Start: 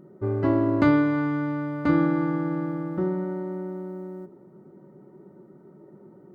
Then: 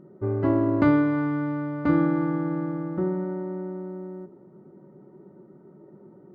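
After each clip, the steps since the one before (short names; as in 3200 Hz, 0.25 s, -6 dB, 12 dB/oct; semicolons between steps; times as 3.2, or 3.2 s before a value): high shelf 3400 Hz -11 dB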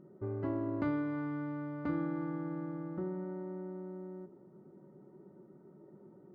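compressor 1.5:1, threshold -36 dBFS, peak gain reduction 7.5 dB; gain -7 dB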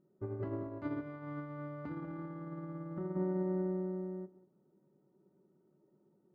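limiter -34 dBFS, peak gain reduction 10.5 dB; on a send: darkening echo 0.189 s, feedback 25%, low-pass 1200 Hz, level -5 dB; on the sum: upward expander 2.5:1, over -51 dBFS; gain +6 dB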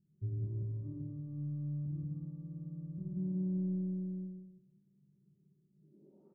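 low-pass sweep 120 Hz -> 1300 Hz, 5.7–6.32; feedback echo 0.184 s, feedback 16%, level -9 dB; reverb, pre-delay 5 ms, DRR -2 dB; gain -1 dB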